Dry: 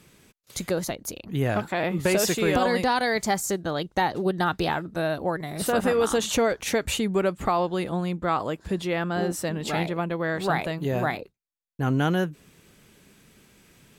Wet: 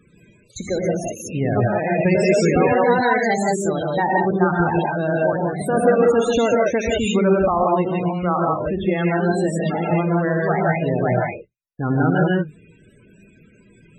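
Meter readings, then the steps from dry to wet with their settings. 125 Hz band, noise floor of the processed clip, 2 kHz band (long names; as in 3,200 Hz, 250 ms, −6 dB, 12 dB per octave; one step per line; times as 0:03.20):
+7.5 dB, −53 dBFS, +5.0 dB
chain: reverb whose tail is shaped and stops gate 200 ms rising, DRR −3 dB
spectral peaks only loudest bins 32
level +2.5 dB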